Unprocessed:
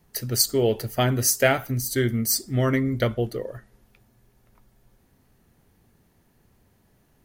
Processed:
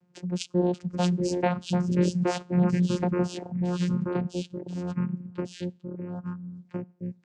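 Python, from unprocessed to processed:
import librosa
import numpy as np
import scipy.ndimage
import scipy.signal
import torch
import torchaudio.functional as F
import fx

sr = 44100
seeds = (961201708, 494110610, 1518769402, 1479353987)

y = fx.echo_pitch(x, sr, ms=552, semitones=-3, count=3, db_per_echo=-3.0)
y = fx.vocoder(y, sr, bands=8, carrier='saw', carrier_hz=178.0)
y = fx.dereverb_blind(y, sr, rt60_s=0.76)
y = y * librosa.db_to_amplitude(-1.0)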